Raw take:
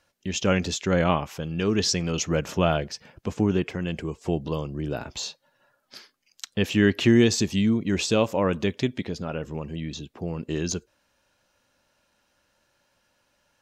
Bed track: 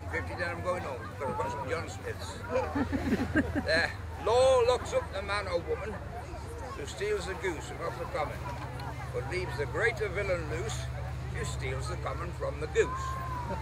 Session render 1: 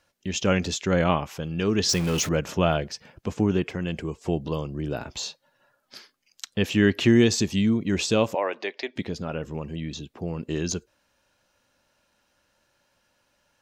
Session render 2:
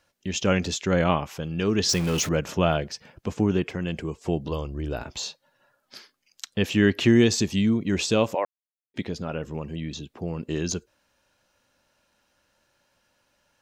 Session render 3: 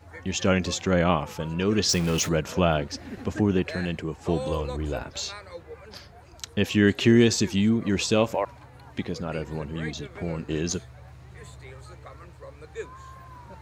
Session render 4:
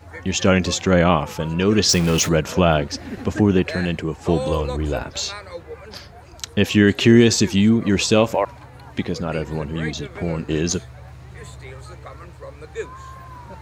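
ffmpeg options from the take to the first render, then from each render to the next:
ffmpeg -i in.wav -filter_complex "[0:a]asettb=1/sr,asplit=3[link_01][link_02][link_03];[link_01]atrim=end=1.894[link_04];[link_02]atrim=start=1.89:end=2.29,asetpts=PTS-STARTPTS,afade=type=in:duration=0.004:curve=qsin,afade=type=out:start_time=0.396:duration=0.004:curve=qsin,aeval=exprs='val(0)+0.5*0.0398*sgn(val(0))':channel_layout=same[link_05];[link_03]atrim=start=2.286[link_06];[link_04][link_05]acrossfade=duration=0.004:curve1=hsin:curve2=qsin[link_07];[link_07][link_06]acrossfade=duration=0.004:curve1=qsin:curve2=hsin,asettb=1/sr,asplit=3[link_08][link_09][link_10];[link_08]atrim=end=8.354[link_11];[link_09]atrim=start=8.35:end=8.96,asetpts=PTS-STARTPTS,afade=type=in:duration=0.004:curve=qsin,afade=type=out:start_time=0.606:duration=0.004:curve=qsin,highpass=frequency=400:width=0.5412,highpass=frequency=400:width=1.3066,equalizer=frequency=470:width_type=q:width=4:gain=-5,equalizer=frequency=740:width_type=q:width=4:gain=5,equalizer=frequency=1300:width_type=q:width=4:gain=-5,equalizer=frequency=2000:width_type=q:width=4:gain=5,equalizer=frequency=3300:width_type=q:width=4:gain=-5,equalizer=frequency=4700:width_type=q:width=4:gain=5,lowpass=frequency=5100:width=0.5412,lowpass=frequency=5100:width=1.3066[link_12];[link_10]atrim=start=8.956[link_13];[link_11][link_12]acrossfade=duration=0.004:curve1=hsin:curve2=qsin[link_14];[link_14][link_13]acrossfade=duration=0.004:curve1=qsin:curve2=hsin" out.wav
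ffmpeg -i in.wav -filter_complex "[0:a]asplit=3[link_01][link_02][link_03];[link_01]afade=type=out:start_time=4.49:duration=0.02[link_04];[link_02]asubboost=boost=9:cutoff=52,afade=type=in:start_time=4.49:duration=0.02,afade=type=out:start_time=5.02:duration=0.02[link_05];[link_03]afade=type=in:start_time=5.02:duration=0.02[link_06];[link_04][link_05][link_06]amix=inputs=3:normalize=0,asplit=3[link_07][link_08][link_09];[link_07]atrim=end=8.45,asetpts=PTS-STARTPTS,afade=type=out:start_time=8.446:duration=0.004:curve=hsin[link_10];[link_08]atrim=start=8.45:end=8.94,asetpts=PTS-STARTPTS,volume=0[link_11];[link_09]atrim=start=8.94,asetpts=PTS-STARTPTS,afade=type=in:duration=0.004:curve=hsin[link_12];[link_10][link_11][link_12]concat=n=3:v=0:a=1" out.wav
ffmpeg -i in.wav -i bed.wav -filter_complex "[1:a]volume=-9.5dB[link_01];[0:a][link_01]amix=inputs=2:normalize=0" out.wav
ffmpeg -i in.wav -af "volume=6.5dB,alimiter=limit=-2dB:level=0:latency=1" out.wav

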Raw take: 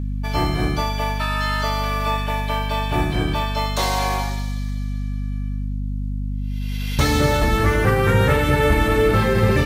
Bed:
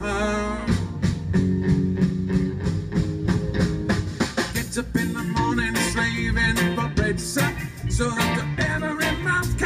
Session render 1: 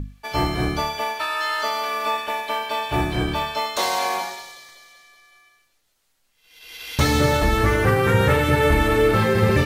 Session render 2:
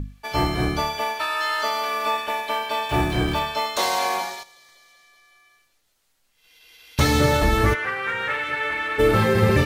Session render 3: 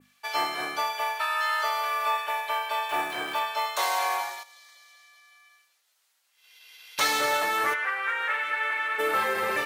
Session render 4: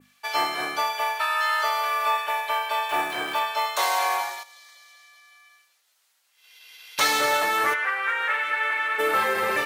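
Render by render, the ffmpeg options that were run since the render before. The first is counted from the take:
ffmpeg -i in.wav -af "bandreject=frequency=50:width_type=h:width=6,bandreject=frequency=100:width_type=h:width=6,bandreject=frequency=150:width_type=h:width=6,bandreject=frequency=200:width_type=h:width=6,bandreject=frequency=250:width_type=h:width=6" out.wav
ffmpeg -i in.wav -filter_complex "[0:a]asettb=1/sr,asplit=3[link_01][link_02][link_03];[link_01]atrim=end=2.894[link_04];[link_02]atrim=start=2.89:end=3.39,asetpts=PTS-STARTPTS,afade=type=in:duration=0.004:curve=qsin,afade=type=out:start_time=0.496:duration=0.004:curve=qsin,aeval=exprs='val(0)+0.5*0.0178*sgn(val(0))':channel_layout=same[link_05];[link_03]atrim=start=3.386[link_06];[link_04][link_05]acrossfade=duration=0.004:curve1=hsin:curve2=qsin[link_07];[link_07][link_06]acrossfade=duration=0.004:curve1=qsin:curve2=hsin,asettb=1/sr,asplit=3[link_08][link_09][link_10];[link_08]atrim=end=4.434[link_11];[link_09]atrim=start=4.43:end=6.98,asetpts=PTS-STARTPTS,afade=type=in:duration=0.004:curve=qsin,afade=type=out:start_time=2.546:duration=0.004:curve=qsin,acompressor=threshold=-53dB:ratio=2.5:attack=3.2:release=140:knee=1:detection=peak[link_12];[link_10]atrim=start=6.976[link_13];[link_11][link_12]acrossfade=duration=0.004:curve1=hsin:curve2=qsin[link_14];[link_14][link_13]acrossfade=duration=0.004:curve1=qsin:curve2=hsin,asplit=3[link_15][link_16][link_17];[link_15]afade=type=out:start_time=7.73:duration=0.02[link_18];[link_16]bandpass=frequency=2000:width_type=q:width=1.3,afade=type=in:start_time=7.73:duration=0.02,afade=type=out:start_time=8.98:duration=0.02[link_19];[link_17]afade=type=in:start_time=8.98:duration=0.02[link_20];[link_18][link_19][link_20]amix=inputs=3:normalize=0" out.wav
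ffmpeg -i in.wav -af "highpass=830,adynamicequalizer=threshold=0.00631:dfrequency=4700:dqfactor=0.76:tfrequency=4700:tqfactor=0.76:attack=5:release=100:ratio=0.375:range=3.5:mode=cutabove:tftype=bell" out.wav
ffmpeg -i in.wav -af "volume=3dB" out.wav

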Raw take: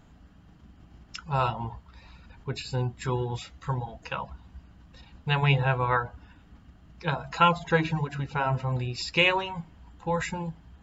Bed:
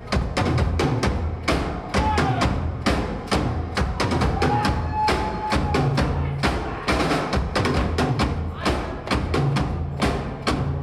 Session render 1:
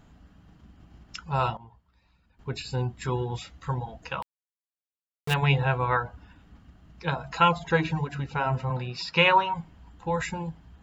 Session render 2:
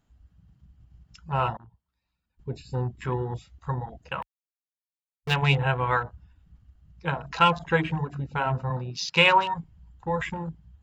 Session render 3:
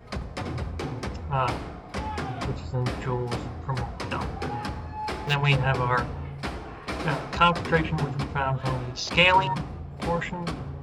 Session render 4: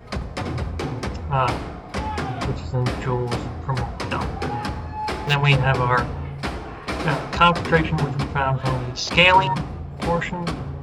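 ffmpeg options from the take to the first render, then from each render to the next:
ffmpeg -i in.wav -filter_complex "[0:a]asettb=1/sr,asplit=3[link_01][link_02][link_03];[link_01]atrim=end=4.224[link_04];[link_02]atrim=start=4.22:end=5.34,asetpts=PTS-STARTPTS,afade=type=in:duration=0.004:curve=qsin,afade=type=out:start_time=1.116:duration=0.004:curve=qsin,aeval=exprs='val(0)*gte(abs(val(0)),0.0422)':channel_layout=same[link_05];[link_03]atrim=start=5.336[link_06];[link_04][link_05]acrossfade=duration=0.004:curve1=hsin:curve2=qsin[link_07];[link_07][link_06]acrossfade=duration=0.004:curve1=qsin:curve2=hsin,asettb=1/sr,asplit=3[link_08][link_09][link_10];[link_08]atrim=end=8.704[link_11];[link_09]atrim=start=8.7:end=9.54,asetpts=PTS-STARTPTS,afade=type=in:duration=0.004:curve=qsin,afade=type=out:start_time=0.836:duration=0.004:curve=qsin,highpass=140,equalizer=frequency=160:width_type=q:width=4:gain=7,equalizer=frequency=310:width_type=q:width=4:gain=-8,equalizer=frequency=540:width_type=q:width=4:gain=3,equalizer=frequency=950:width_type=q:width=4:gain=9,equalizer=frequency=1400:width_type=q:width=4:gain=8,lowpass=frequency=5900:width=0.5412,lowpass=frequency=5900:width=1.3066[link_12];[link_10]atrim=start=9.536[link_13];[link_11][link_12]acrossfade=duration=0.004:curve1=hsin:curve2=qsin[link_14];[link_14][link_13]acrossfade=duration=0.004:curve1=qsin:curve2=hsin,asplit=3[link_15][link_16][link_17];[link_15]atrim=end=1.57,asetpts=PTS-STARTPTS,afade=type=out:start_time=1.44:duration=0.13:curve=log:silence=0.16788[link_18];[link_16]atrim=start=1.57:end=2.39,asetpts=PTS-STARTPTS,volume=-15.5dB[link_19];[link_17]atrim=start=2.39,asetpts=PTS-STARTPTS,afade=type=in:duration=0.13:curve=log:silence=0.16788[link_20];[link_18][link_19][link_20]concat=n=3:v=0:a=1" out.wav
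ffmpeg -i in.wav -af "afwtdn=0.0126,highshelf=frequency=3700:gain=7.5" out.wav
ffmpeg -i in.wav -i bed.wav -filter_complex "[1:a]volume=-11dB[link_01];[0:a][link_01]amix=inputs=2:normalize=0" out.wav
ffmpeg -i in.wav -af "volume=5dB,alimiter=limit=-2dB:level=0:latency=1" out.wav

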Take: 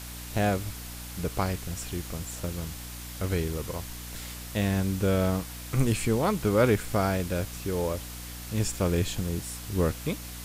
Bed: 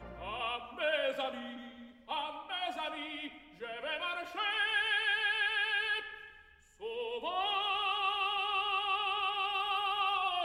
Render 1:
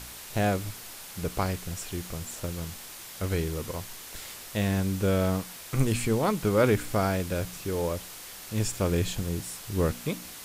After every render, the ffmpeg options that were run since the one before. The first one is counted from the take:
ffmpeg -i in.wav -af "bandreject=frequency=60:width_type=h:width=4,bandreject=frequency=120:width_type=h:width=4,bandreject=frequency=180:width_type=h:width=4,bandreject=frequency=240:width_type=h:width=4,bandreject=frequency=300:width_type=h:width=4" out.wav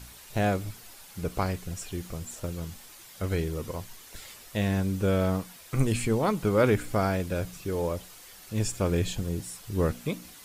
ffmpeg -i in.wav -af "afftdn=noise_reduction=8:noise_floor=-44" out.wav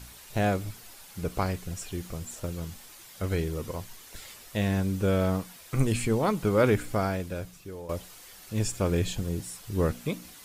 ffmpeg -i in.wav -filter_complex "[0:a]asplit=2[link_01][link_02];[link_01]atrim=end=7.89,asetpts=PTS-STARTPTS,afade=type=out:start_time=6.79:duration=1.1:silence=0.199526[link_03];[link_02]atrim=start=7.89,asetpts=PTS-STARTPTS,afade=type=in:duration=0.004:curve=hsin:silence=0.199526[link_04];[link_03][link_04]concat=n=2:v=0:a=1" out.wav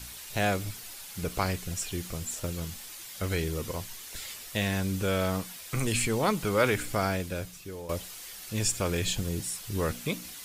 ffmpeg -i in.wav -filter_complex "[0:a]acrossover=split=560|1800[link_01][link_02][link_03];[link_01]alimiter=limit=-22.5dB:level=0:latency=1[link_04];[link_03]acontrast=51[link_05];[link_04][link_02][link_05]amix=inputs=3:normalize=0" out.wav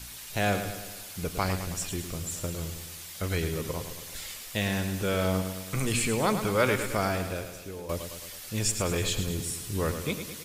ffmpeg -i in.wav -af "aecho=1:1:107|214|321|428|535|642|749:0.355|0.202|0.115|0.0657|0.0375|0.0213|0.0122" out.wav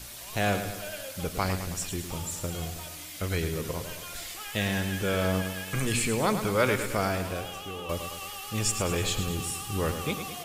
ffmpeg -i in.wav -i bed.wav -filter_complex "[1:a]volume=-8.5dB[link_01];[0:a][link_01]amix=inputs=2:normalize=0" out.wav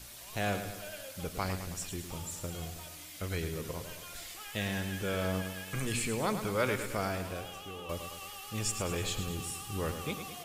ffmpeg -i in.wav -af "volume=-6dB" out.wav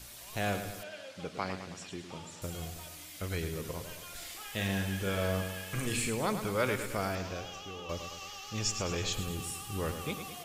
ffmpeg -i in.wav -filter_complex "[0:a]asettb=1/sr,asplit=3[link_01][link_02][link_03];[link_01]atrim=end=0.834[link_04];[link_02]atrim=start=0.83:end=2.42,asetpts=PTS-STARTPTS,afade=type=in:duration=0.004:curve=qsin,afade=type=out:start_time=1.586:duration=0.004:curve=qsin,highpass=160,lowpass=4700[link_05];[link_03]atrim=start=2.416[link_06];[link_04][link_05]acrossfade=duration=0.004:curve1=hsin:curve2=qsin[link_07];[link_07][link_06]acrossfade=duration=0.004:curve1=qsin:curve2=hsin,asettb=1/sr,asplit=3[link_08][link_09][link_10];[link_08]atrim=end=4.174[link_11];[link_09]atrim=start=4.17:end=6.1,asetpts=PTS-STARTPTS,afade=type=in:duration=0.004:curve=qsin,afade=type=out:start_time=1.926:duration=0.004:curve=qsin,asplit=2[link_12][link_13];[link_13]adelay=41,volume=-6dB[link_14];[link_12][link_14]amix=inputs=2:normalize=0,atrim=end_sample=85113[link_15];[link_10]atrim=start=6.096[link_16];[link_11][link_15]acrossfade=duration=0.004:curve1=hsin:curve2=qsin[link_17];[link_17][link_16]acrossfade=duration=0.004:curve1=qsin:curve2=hsin,asettb=1/sr,asplit=3[link_18][link_19][link_20];[link_18]atrim=end=7.154[link_21];[link_19]atrim=start=7.15:end=9.13,asetpts=PTS-STARTPTS,afade=type=in:duration=0.004:curve=qsin,afade=type=out:start_time=1.976:duration=0.004:curve=qsin,highshelf=frequency=7600:width_type=q:width=3:gain=-8.5[link_22];[link_20]atrim=start=9.126[link_23];[link_21][link_22]acrossfade=duration=0.004:curve1=hsin:curve2=qsin[link_24];[link_24][link_23]acrossfade=duration=0.004:curve1=qsin:curve2=hsin" out.wav

